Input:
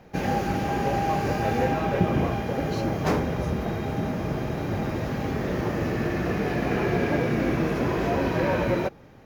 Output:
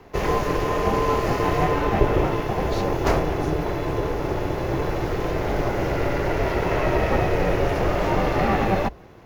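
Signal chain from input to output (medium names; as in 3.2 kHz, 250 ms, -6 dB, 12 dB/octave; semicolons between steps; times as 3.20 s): ring modulator 290 Hz; frequency shift -60 Hz; trim +6.5 dB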